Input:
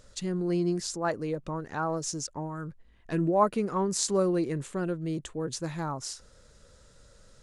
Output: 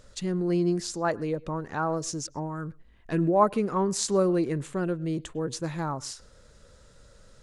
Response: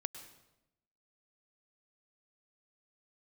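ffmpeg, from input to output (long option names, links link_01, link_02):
-filter_complex "[0:a]asplit=2[link_01][link_02];[1:a]atrim=start_sample=2205,afade=type=out:start_time=0.18:duration=0.01,atrim=end_sample=8379,lowpass=4800[link_03];[link_02][link_03]afir=irnorm=-1:irlink=0,volume=-8.5dB[link_04];[link_01][link_04]amix=inputs=2:normalize=0"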